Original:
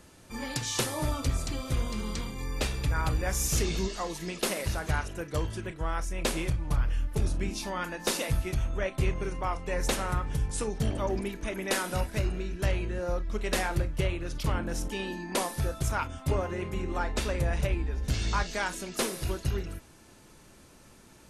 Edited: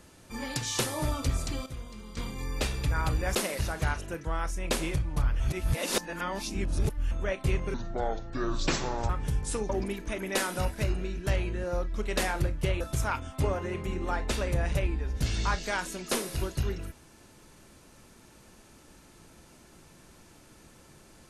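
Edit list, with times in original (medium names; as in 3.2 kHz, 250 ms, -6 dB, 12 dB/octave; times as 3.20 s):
1.66–2.17 s: gain -11 dB
3.35–4.42 s: delete
5.32–5.79 s: delete
6.94–8.65 s: reverse
9.28–10.16 s: speed 65%
10.76–11.05 s: delete
14.16–15.68 s: delete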